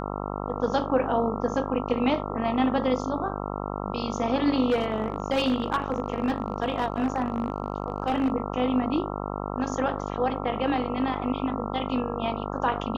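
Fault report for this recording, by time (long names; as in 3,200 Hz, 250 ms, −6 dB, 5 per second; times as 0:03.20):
mains buzz 50 Hz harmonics 27 −32 dBFS
0:04.69–0:08.32: clipping −18.5 dBFS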